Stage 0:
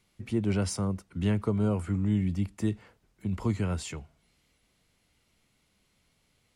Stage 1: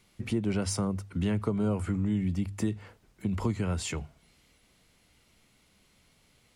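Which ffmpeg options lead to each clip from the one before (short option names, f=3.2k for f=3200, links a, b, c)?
-af "bandreject=f=50:t=h:w=6,bandreject=f=100:t=h:w=6,bandreject=f=150:t=h:w=6,acompressor=threshold=-34dB:ratio=2.5,volume=6dB"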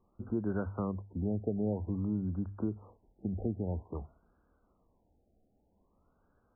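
-af "equalizer=f=140:t=o:w=0.6:g=-9.5,afftfilt=real='re*lt(b*sr/1024,800*pow(1700/800,0.5+0.5*sin(2*PI*0.51*pts/sr)))':imag='im*lt(b*sr/1024,800*pow(1700/800,0.5+0.5*sin(2*PI*0.51*pts/sr)))':win_size=1024:overlap=0.75,volume=-2.5dB"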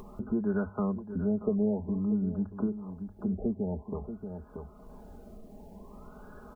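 -af "aecho=1:1:4.8:0.73,aecho=1:1:633:0.2,acompressor=mode=upward:threshold=-32dB:ratio=2.5,volume=1.5dB"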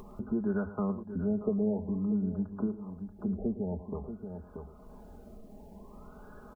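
-filter_complex "[0:a]asplit=2[a][b];[b]adelay=110.8,volume=-14dB,highshelf=f=4k:g=-2.49[c];[a][c]amix=inputs=2:normalize=0,volume=-1.5dB"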